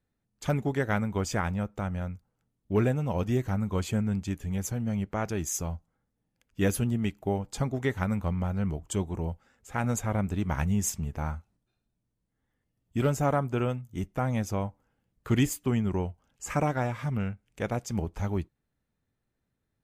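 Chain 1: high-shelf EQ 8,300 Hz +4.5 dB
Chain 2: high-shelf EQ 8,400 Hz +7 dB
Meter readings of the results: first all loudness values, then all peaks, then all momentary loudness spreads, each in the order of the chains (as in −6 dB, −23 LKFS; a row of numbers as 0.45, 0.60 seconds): −30.0, −30.0 LKFS; −13.5, −13.5 dBFS; 9, 10 LU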